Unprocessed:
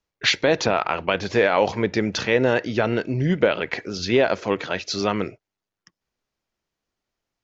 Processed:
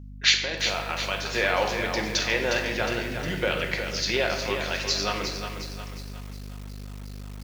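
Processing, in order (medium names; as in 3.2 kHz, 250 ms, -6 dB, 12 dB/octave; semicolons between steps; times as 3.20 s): 0.43–1.18 s: level held to a coarse grid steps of 12 dB; tilt EQ +3.5 dB/octave; simulated room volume 540 m³, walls mixed, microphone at 0.95 m; hum 50 Hz, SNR 12 dB; bit-crushed delay 360 ms, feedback 55%, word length 6-bit, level -7 dB; trim -6.5 dB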